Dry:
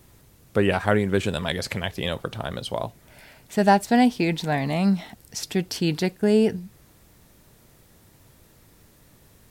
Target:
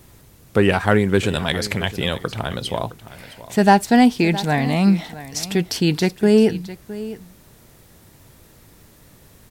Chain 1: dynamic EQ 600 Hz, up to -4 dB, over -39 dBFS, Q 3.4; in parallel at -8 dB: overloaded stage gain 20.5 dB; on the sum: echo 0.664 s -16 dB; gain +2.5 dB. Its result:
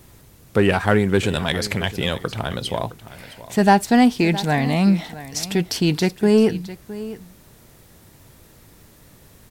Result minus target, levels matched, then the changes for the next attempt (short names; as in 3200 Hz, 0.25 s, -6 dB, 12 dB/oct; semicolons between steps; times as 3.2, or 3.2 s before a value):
overloaded stage: distortion +12 dB
change: overloaded stage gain 12.5 dB